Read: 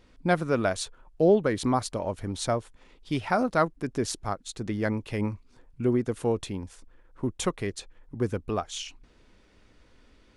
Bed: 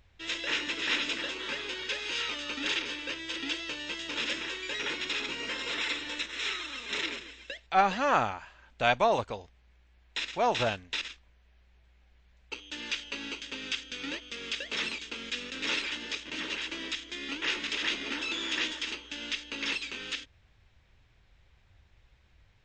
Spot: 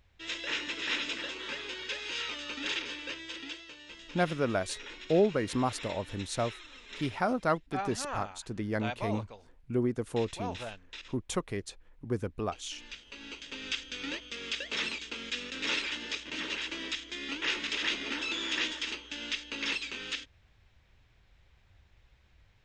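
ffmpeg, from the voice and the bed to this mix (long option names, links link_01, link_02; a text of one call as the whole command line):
ffmpeg -i stem1.wav -i stem2.wav -filter_complex "[0:a]adelay=3900,volume=-4.5dB[link_01];[1:a]volume=8.5dB,afade=type=out:start_time=3.12:duration=0.55:silence=0.354813,afade=type=in:start_time=13.05:duration=0.72:silence=0.266073[link_02];[link_01][link_02]amix=inputs=2:normalize=0" out.wav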